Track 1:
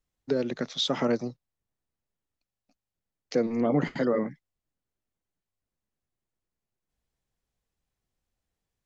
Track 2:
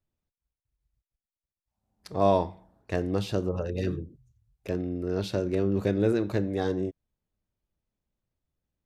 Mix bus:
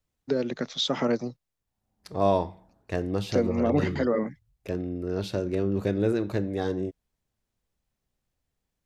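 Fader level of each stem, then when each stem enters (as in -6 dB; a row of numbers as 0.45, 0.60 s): +0.5, -0.5 dB; 0.00, 0.00 s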